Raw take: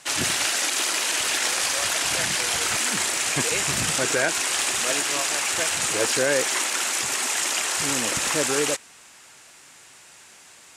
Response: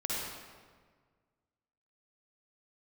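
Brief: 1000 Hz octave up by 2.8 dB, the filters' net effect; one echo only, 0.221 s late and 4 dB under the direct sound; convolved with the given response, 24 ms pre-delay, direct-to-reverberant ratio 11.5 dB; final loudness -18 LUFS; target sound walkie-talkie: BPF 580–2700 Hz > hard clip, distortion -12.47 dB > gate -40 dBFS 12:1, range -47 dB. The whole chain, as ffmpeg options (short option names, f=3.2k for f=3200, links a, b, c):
-filter_complex "[0:a]equalizer=f=1k:t=o:g=4.5,aecho=1:1:221:0.631,asplit=2[a][b];[1:a]atrim=start_sample=2205,adelay=24[c];[b][c]afir=irnorm=-1:irlink=0,volume=-17dB[d];[a][d]amix=inputs=2:normalize=0,highpass=580,lowpass=2.7k,asoftclip=type=hard:threshold=-22.5dB,agate=range=-47dB:threshold=-40dB:ratio=12,volume=8dB"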